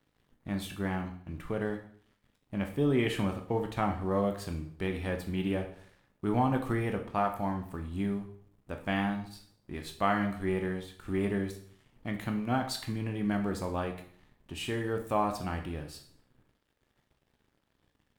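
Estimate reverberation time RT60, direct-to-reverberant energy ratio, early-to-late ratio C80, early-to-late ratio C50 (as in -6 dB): 0.55 s, 4.0 dB, 13.0 dB, 9.5 dB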